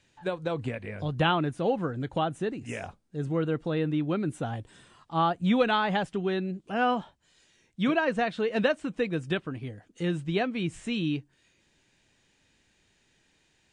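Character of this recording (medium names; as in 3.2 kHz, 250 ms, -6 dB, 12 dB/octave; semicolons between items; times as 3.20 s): noise floor -69 dBFS; spectral tilt -5.0 dB/octave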